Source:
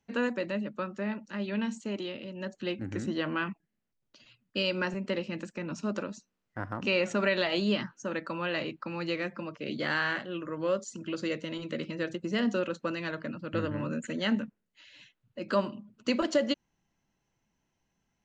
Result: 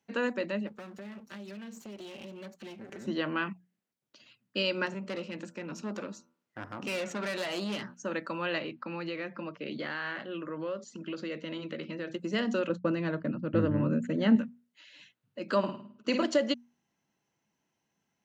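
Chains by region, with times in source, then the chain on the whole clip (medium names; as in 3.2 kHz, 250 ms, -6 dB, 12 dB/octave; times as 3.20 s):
0.67–3.07 s: comb filter that takes the minimum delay 5.1 ms + compression 12:1, threshold -39 dBFS
4.86–7.94 s: valve stage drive 30 dB, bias 0.3 + de-hum 82.71 Hz, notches 18
8.58–12.14 s: low-pass 4.3 kHz + compression 4:1, threshold -32 dBFS
12.69–14.36 s: expander -40 dBFS + tilt EQ -3.5 dB/octave
15.58–16.23 s: treble shelf 6.8 kHz -5 dB + flutter echo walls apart 9.2 m, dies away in 0.5 s + tape noise reduction on one side only decoder only
whole clip: high-pass 140 Hz; hum notches 60/120/180/240 Hz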